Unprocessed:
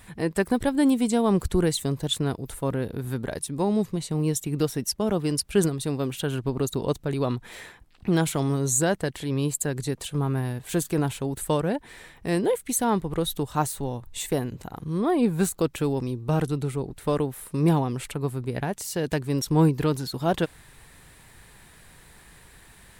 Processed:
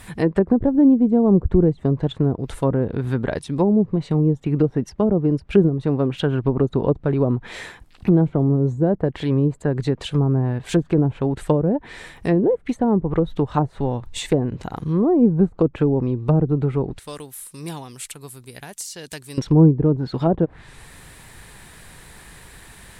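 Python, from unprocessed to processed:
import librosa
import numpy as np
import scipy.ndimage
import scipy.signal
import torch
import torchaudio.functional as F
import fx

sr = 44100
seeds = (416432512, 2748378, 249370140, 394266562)

y = fx.pre_emphasis(x, sr, coefficient=0.9, at=(16.99, 19.38))
y = fx.env_lowpass_down(y, sr, base_hz=490.0, full_db=-20.0)
y = F.gain(torch.from_numpy(y), 7.5).numpy()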